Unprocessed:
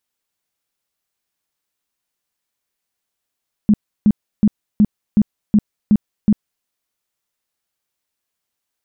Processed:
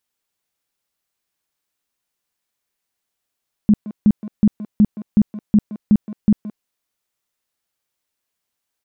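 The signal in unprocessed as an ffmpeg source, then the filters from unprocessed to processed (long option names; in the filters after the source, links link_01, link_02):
-f lavfi -i "aevalsrc='0.422*sin(2*PI*210*mod(t,0.37))*lt(mod(t,0.37),10/210)':duration=2.96:sample_rate=44100"
-filter_complex "[0:a]asplit=2[link_01][link_02];[link_02]adelay=170,highpass=300,lowpass=3400,asoftclip=type=hard:threshold=-16dB,volume=-10dB[link_03];[link_01][link_03]amix=inputs=2:normalize=0"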